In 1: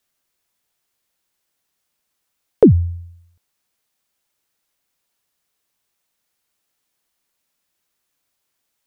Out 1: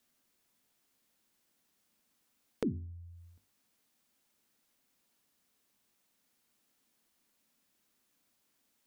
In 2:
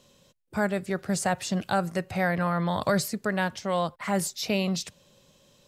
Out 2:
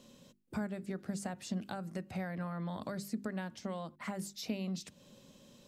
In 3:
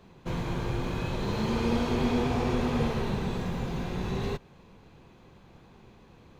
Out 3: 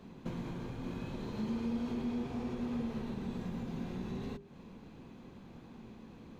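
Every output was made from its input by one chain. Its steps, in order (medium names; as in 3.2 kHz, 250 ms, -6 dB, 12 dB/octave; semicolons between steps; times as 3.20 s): compression 5:1, threshold -40 dBFS; peaking EQ 240 Hz +11.5 dB 0.92 oct; hum notches 50/100/150/200/250/300/350/400 Hz; trim -2 dB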